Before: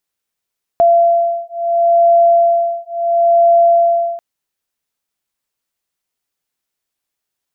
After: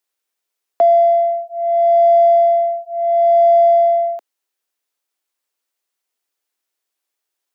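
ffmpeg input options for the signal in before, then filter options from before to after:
-f lavfi -i "aevalsrc='0.251*(sin(2*PI*682*t)+sin(2*PI*682.73*t))':d=3.39:s=44100"
-filter_complex "[0:a]highpass=f=290:w=0.5412,highpass=f=290:w=1.3066,acrossover=split=370|450[a][b][c];[b]asoftclip=type=tanh:threshold=-35dB[d];[a][d][c]amix=inputs=3:normalize=0"

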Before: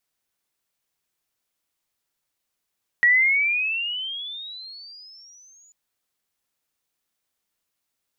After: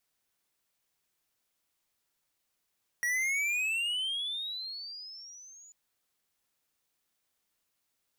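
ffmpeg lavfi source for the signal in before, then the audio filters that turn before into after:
-f lavfi -i "aevalsrc='pow(10,(-12.5-39*t/2.69)/20)*sin(2*PI*1900*2.69/(22.5*log(2)/12)*(exp(22.5*log(2)/12*t/2.69)-1))':d=2.69:s=44100"
-af "asoftclip=type=tanh:threshold=-29.5dB"

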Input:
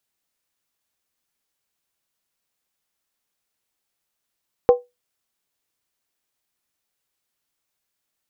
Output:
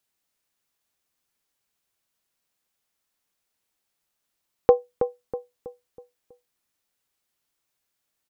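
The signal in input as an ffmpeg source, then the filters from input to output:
-f lavfi -i "aevalsrc='0.562*pow(10,-3*t/0.2)*sin(2*PI*490*t)+0.168*pow(10,-3*t/0.158)*sin(2*PI*781.1*t)+0.0501*pow(10,-3*t/0.137)*sin(2*PI*1046.6*t)+0.015*pow(10,-3*t/0.132)*sin(2*PI*1125*t)+0.00447*pow(10,-3*t/0.123)*sin(2*PI*1300*t)':d=0.63:s=44100"
-filter_complex "[0:a]asplit=2[a][b];[b]adelay=323,lowpass=f=1.3k:p=1,volume=-8dB,asplit=2[c][d];[d]adelay=323,lowpass=f=1.3k:p=1,volume=0.45,asplit=2[e][f];[f]adelay=323,lowpass=f=1.3k:p=1,volume=0.45,asplit=2[g][h];[h]adelay=323,lowpass=f=1.3k:p=1,volume=0.45,asplit=2[i][j];[j]adelay=323,lowpass=f=1.3k:p=1,volume=0.45[k];[c][e][g][i][k]amix=inputs=5:normalize=0[l];[a][l]amix=inputs=2:normalize=0"

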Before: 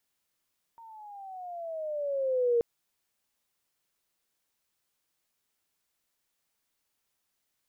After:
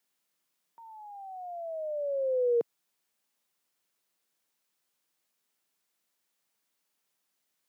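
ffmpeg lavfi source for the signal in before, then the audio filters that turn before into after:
-f lavfi -i "aevalsrc='pow(10,(-21+26*(t/1.83-1))/20)*sin(2*PI*928*1.83/(-12*log(2)/12)*(exp(-12*log(2)/12*t/1.83)-1))':d=1.83:s=44100"
-af "highpass=f=140:w=0.5412,highpass=f=140:w=1.3066"

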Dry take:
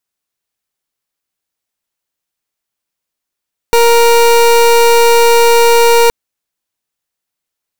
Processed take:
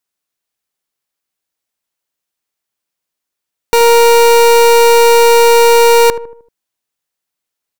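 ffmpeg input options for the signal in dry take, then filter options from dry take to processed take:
-f lavfi -i "aevalsrc='0.447*(2*lt(mod(468*t,1),0.28)-1)':d=2.37:s=44100"
-filter_complex "[0:a]lowshelf=f=110:g=-5.5,asplit=2[a][b];[b]adelay=77,lowpass=f=1.1k:p=1,volume=-12.5dB,asplit=2[c][d];[d]adelay=77,lowpass=f=1.1k:p=1,volume=0.5,asplit=2[e][f];[f]adelay=77,lowpass=f=1.1k:p=1,volume=0.5,asplit=2[g][h];[h]adelay=77,lowpass=f=1.1k:p=1,volume=0.5,asplit=2[i][j];[j]adelay=77,lowpass=f=1.1k:p=1,volume=0.5[k];[c][e][g][i][k]amix=inputs=5:normalize=0[l];[a][l]amix=inputs=2:normalize=0"

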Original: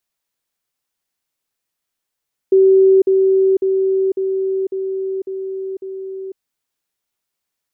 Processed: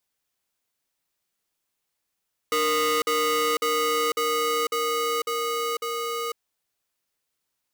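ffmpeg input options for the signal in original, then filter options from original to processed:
-f lavfi -i "aevalsrc='pow(10,(-7-3*floor(t/0.55))/20)*sin(2*PI*383*t)*clip(min(mod(t,0.55),0.5-mod(t,0.55))/0.005,0,1)':d=3.85:s=44100"
-af "asoftclip=type=tanh:threshold=-22.5dB,aeval=exprs='val(0)*sgn(sin(2*PI*850*n/s))':c=same"

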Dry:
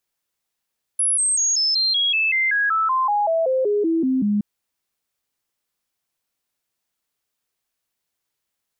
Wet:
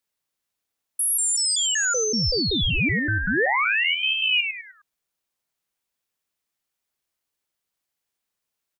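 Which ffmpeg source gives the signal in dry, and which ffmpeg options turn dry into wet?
-f lavfi -i "aevalsrc='0.15*clip(min(mod(t,0.19),0.19-mod(t,0.19))/0.005,0,1)*sin(2*PI*10500*pow(2,-floor(t/0.19)/3)*mod(t,0.19))':d=3.42:s=44100"
-filter_complex "[0:a]asplit=2[a][b];[b]adelay=102,lowpass=f=830:p=1,volume=-6dB,asplit=2[c][d];[d]adelay=102,lowpass=f=830:p=1,volume=0.37,asplit=2[e][f];[f]adelay=102,lowpass=f=830:p=1,volume=0.37,asplit=2[g][h];[h]adelay=102,lowpass=f=830:p=1,volume=0.37[i];[a][c][e][g][i]amix=inputs=5:normalize=0,aeval=exprs='val(0)*sin(2*PI*1800*n/s+1800*0.6/0.48*sin(2*PI*0.48*n/s))':c=same"

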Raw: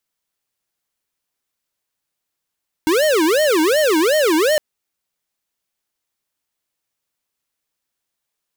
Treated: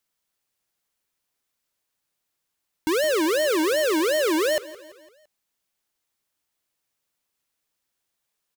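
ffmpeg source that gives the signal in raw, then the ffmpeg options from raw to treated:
-f lavfi -i "aevalsrc='0.178*(2*lt(mod((465*t-157/(2*PI*2.7)*sin(2*PI*2.7*t)),1),0.5)-1)':d=1.71:s=44100"
-af "alimiter=limit=-21.5dB:level=0:latency=1,aecho=1:1:169|338|507|676:0.119|0.0618|0.0321|0.0167"

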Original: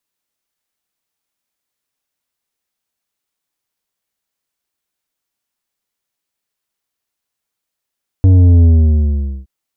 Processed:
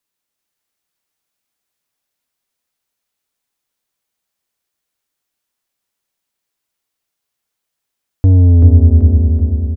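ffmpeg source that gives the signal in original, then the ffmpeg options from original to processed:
-f lavfi -i "aevalsrc='0.531*clip((1.22-t)/0.83,0,1)*tanh(2.66*sin(2*PI*95*1.22/log(65/95)*(exp(log(65/95)*t/1.22)-1)))/tanh(2.66)':d=1.22:s=44100"
-af "aecho=1:1:384|768|1152|1536|1920|2304|2688:0.668|0.348|0.181|0.094|0.0489|0.0254|0.0132"

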